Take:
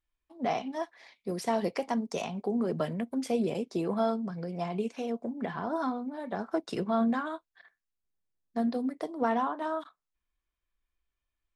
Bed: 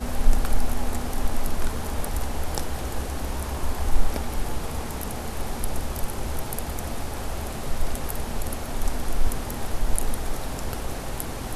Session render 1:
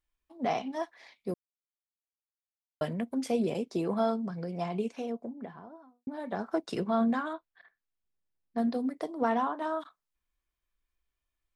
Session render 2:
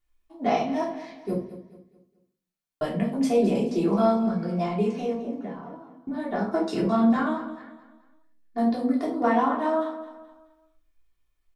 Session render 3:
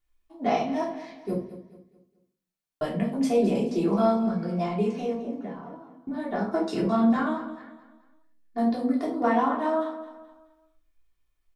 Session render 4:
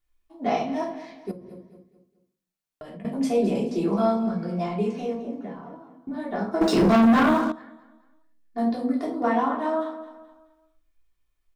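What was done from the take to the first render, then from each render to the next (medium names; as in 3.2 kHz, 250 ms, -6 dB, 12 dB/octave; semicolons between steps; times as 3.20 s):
1.34–2.81 s: mute; 4.69–6.07 s: studio fade out; 7.33–8.58 s: distance through air 170 m
feedback delay 213 ms, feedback 38%, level -14 dB; simulated room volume 360 m³, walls furnished, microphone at 3.3 m
trim -1 dB
1.31–3.05 s: compression 12:1, threshold -37 dBFS; 6.61–7.52 s: waveshaping leveller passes 3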